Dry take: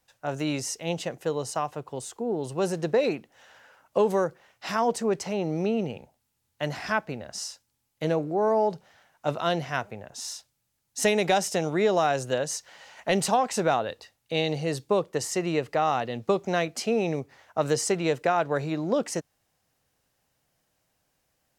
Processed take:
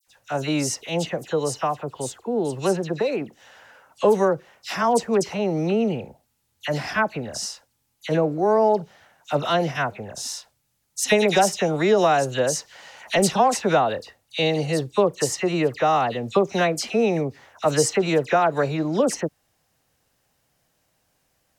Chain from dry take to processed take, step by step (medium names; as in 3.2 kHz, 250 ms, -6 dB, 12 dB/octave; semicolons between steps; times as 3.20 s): 2.67–3.14 s: compression 2:1, threshold -29 dBFS, peak gain reduction 6 dB; phase dispersion lows, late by 75 ms, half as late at 2.3 kHz; trim +5 dB